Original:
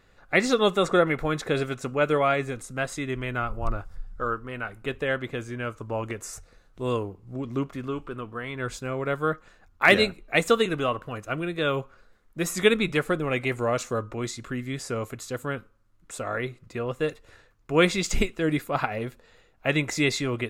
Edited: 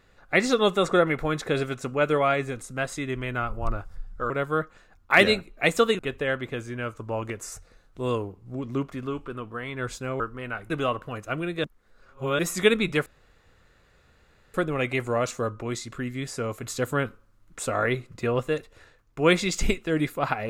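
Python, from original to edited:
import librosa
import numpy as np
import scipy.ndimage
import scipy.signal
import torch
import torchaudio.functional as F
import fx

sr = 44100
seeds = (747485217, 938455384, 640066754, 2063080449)

y = fx.edit(x, sr, fx.swap(start_s=4.3, length_s=0.5, other_s=9.01, other_length_s=1.69),
    fx.reverse_span(start_s=11.64, length_s=0.75),
    fx.insert_room_tone(at_s=13.06, length_s=1.48),
    fx.clip_gain(start_s=15.15, length_s=1.85, db=5.0), tone=tone)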